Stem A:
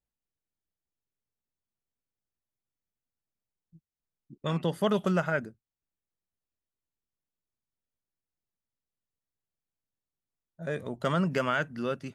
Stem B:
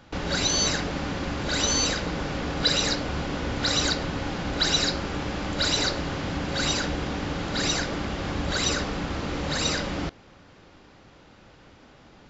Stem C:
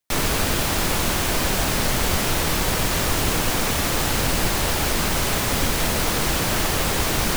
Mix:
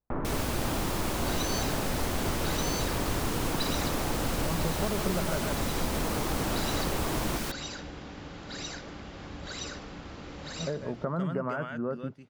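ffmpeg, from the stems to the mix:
-filter_complex "[0:a]highshelf=f=4.2k:g=-8,volume=2.5dB,asplit=3[a][b][c];[b]volume=-14dB[d];[1:a]adelay=950,volume=-13dB,asplit=2[e][f];[f]volume=-21dB[g];[2:a]equalizer=f=280:t=o:w=0.77:g=3.5,volume=-4.5dB,asplit=2[h][i];[i]volume=-8dB[j];[c]apad=whole_len=584242[k];[e][k]sidechaincompress=threshold=-32dB:ratio=8:attack=24:release=1470[l];[a][h]amix=inputs=2:normalize=0,lowpass=f=1.3k:w=0.5412,lowpass=f=1.3k:w=1.3066,acompressor=threshold=-28dB:ratio=6,volume=0dB[m];[d][g][j]amix=inputs=3:normalize=0,aecho=0:1:147:1[n];[l][m][n]amix=inputs=3:normalize=0"

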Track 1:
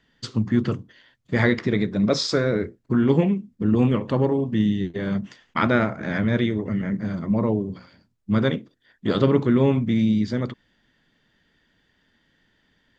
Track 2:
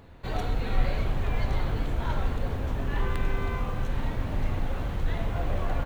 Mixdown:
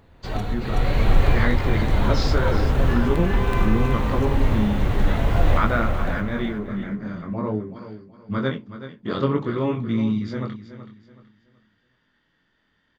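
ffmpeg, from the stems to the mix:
-filter_complex "[0:a]flanger=delay=17.5:depth=7.1:speed=0.51,lowpass=6.3k,equalizer=f=1.2k:w=2:g=7,volume=-6.5dB,asplit=3[a][b][c];[b]volume=-12.5dB[d];[1:a]dynaudnorm=f=110:g=5:m=7.5dB,volume=-3dB,asplit=2[e][f];[f]volume=-4.5dB[g];[c]apad=whole_len=258036[h];[e][h]sidechaincompress=threshold=-34dB:ratio=3:attack=41:release=529[i];[d][g]amix=inputs=2:normalize=0,aecho=0:1:376|752|1128|1504:1|0.31|0.0961|0.0298[j];[a][i][j]amix=inputs=3:normalize=0,dynaudnorm=f=120:g=13:m=5dB"

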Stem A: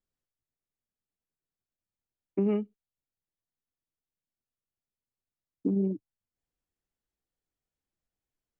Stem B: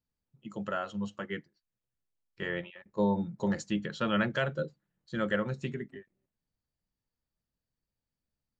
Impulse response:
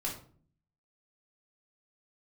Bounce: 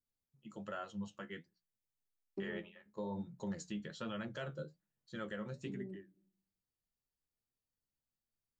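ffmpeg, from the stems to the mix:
-filter_complex "[0:a]lowpass=1.3k,volume=-12.5dB,asplit=2[a][b];[b]volume=-14.5dB[c];[1:a]flanger=delay=8:depth=6.4:regen=53:speed=1.2:shape=sinusoidal,adynamicequalizer=threshold=0.00282:dfrequency=1900:dqfactor=0.85:tfrequency=1900:tqfactor=0.85:attack=5:release=100:ratio=0.375:range=3.5:mode=cutabove:tftype=bell,bandreject=f=60:t=h:w=6,bandreject=f=120:t=h:w=6,bandreject=f=180:t=h:w=6,volume=-5dB,asplit=2[d][e];[e]apad=whole_len=379132[f];[a][f]sidechaincompress=threshold=-56dB:ratio=3:attack=16:release=222[g];[2:a]atrim=start_sample=2205[h];[c][h]afir=irnorm=-1:irlink=0[i];[g][d][i]amix=inputs=3:normalize=0,highshelf=f=5.3k:g=7,alimiter=level_in=7.5dB:limit=-24dB:level=0:latency=1:release=145,volume=-7.5dB"

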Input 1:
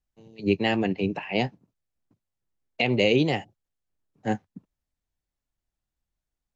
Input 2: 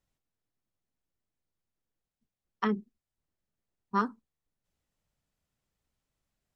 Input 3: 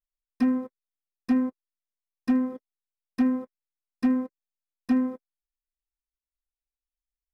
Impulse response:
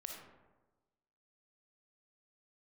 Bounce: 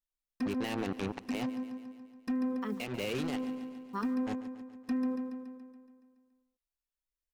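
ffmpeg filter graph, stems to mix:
-filter_complex "[0:a]acrusher=bits=3:mix=0:aa=0.5,volume=-6.5dB,asplit=2[a][b];[b]volume=-23dB[c];[1:a]acrusher=bits=8:mix=0:aa=0.000001,volume=-8dB,asplit=3[d][e][f];[e]volume=-22dB[g];[2:a]alimiter=limit=-23.5dB:level=0:latency=1,volume=-3.5dB,asplit=2[h][i];[i]volume=-7dB[j];[f]apad=whole_len=288992[k];[a][k]sidechaincompress=threshold=-44dB:ratio=6:attack=36:release=907[l];[c][g][j]amix=inputs=3:normalize=0,aecho=0:1:141|282|423|564|705|846|987|1128|1269|1410:1|0.6|0.36|0.216|0.13|0.0778|0.0467|0.028|0.0168|0.0101[m];[l][d][h][m]amix=inputs=4:normalize=0,alimiter=level_in=1.5dB:limit=-24dB:level=0:latency=1:release=84,volume=-1.5dB"

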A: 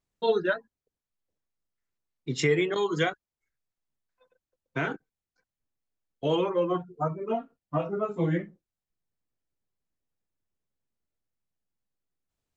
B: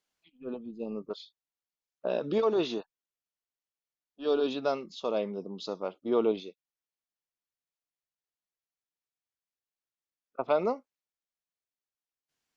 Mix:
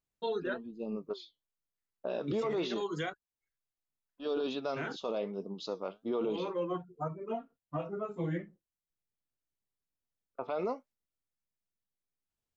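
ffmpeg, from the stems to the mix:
-filter_complex "[0:a]volume=-7.5dB[a];[1:a]agate=range=-18dB:threshold=-53dB:ratio=16:detection=peak,flanger=delay=4.3:depth=6.1:regen=73:speed=1.1:shape=triangular,volume=2dB,asplit=2[b][c];[c]apad=whole_len=553979[d];[a][d]sidechaincompress=threshold=-35dB:ratio=8:attack=16:release=164[e];[e][b]amix=inputs=2:normalize=0,alimiter=level_in=1.5dB:limit=-24dB:level=0:latency=1:release=15,volume=-1.5dB"

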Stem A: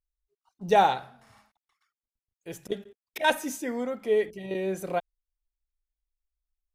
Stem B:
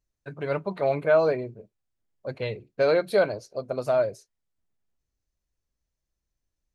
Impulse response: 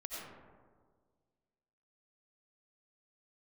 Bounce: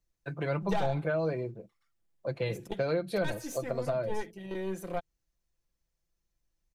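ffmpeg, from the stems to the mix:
-filter_complex "[0:a]aeval=exprs='0.422*(cos(1*acos(clip(val(0)/0.422,-1,1)))-cos(1*PI/2))+0.0422*(cos(8*acos(clip(val(0)/0.422,-1,1)))-cos(8*PI/2))':c=same,volume=-6.5dB[a];[1:a]volume=0dB[b];[a][b]amix=inputs=2:normalize=0,aecho=1:1:5.9:0.46,acrossover=split=250[c][d];[d]acompressor=threshold=-30dB:ratio=6[e];[c][e]amix=inputs=2:normalize=0"

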